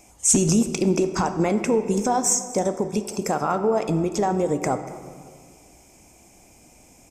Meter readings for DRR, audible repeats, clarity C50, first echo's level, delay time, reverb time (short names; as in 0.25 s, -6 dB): 8.5 dB, 1, 10.0 dB, -20.0 dB, 0.241 s, 1.9 s